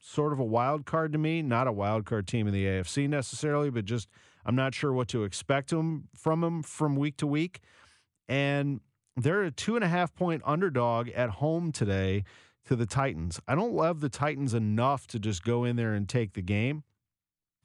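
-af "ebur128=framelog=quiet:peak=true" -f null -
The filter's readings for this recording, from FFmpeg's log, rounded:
Integrated loudness:
  I:         -29.7 LUFS
  Threshold: -40.0 LUFS
Loudness range:
  LRA:         1.8 LU
  Threshold: -50.0 LUFS
  LRA low:   -31.0 LUFS
  LRA high:  -29.2 LUFS
True peak:
  Peak:      -13.8 dBFS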